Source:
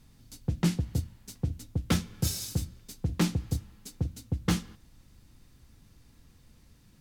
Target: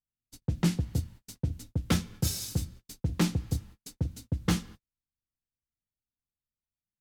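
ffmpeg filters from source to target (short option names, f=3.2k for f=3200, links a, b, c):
-af "agate=range=-42dB:threshold=-46dB:ratio=16:detection=peak"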